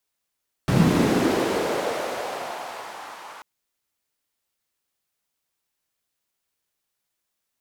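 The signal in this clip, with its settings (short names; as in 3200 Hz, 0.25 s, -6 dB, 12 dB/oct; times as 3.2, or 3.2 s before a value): swept filtered noise white, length 2.74 s bandpass, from 130 Hz, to 1000 Hz, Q 2.1, linear, gain ramp -33 dB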